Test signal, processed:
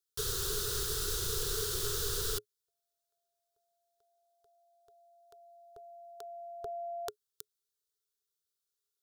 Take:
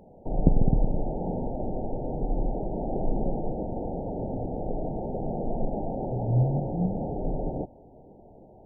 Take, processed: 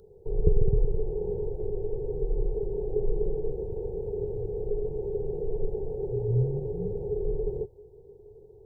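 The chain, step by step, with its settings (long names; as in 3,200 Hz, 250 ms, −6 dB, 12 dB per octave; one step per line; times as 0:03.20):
drawn EQ curve 110 Hz 0 dB, 180 Hz −10 dB, 260 Hz −29 dB, 420 Hz +12 dB, 620 Hz −23 dB, 950 Hz −12 dB, 1,400 Hz +2 dB, 2,200 Hz −17 dB, 3,600 Hz +5 dB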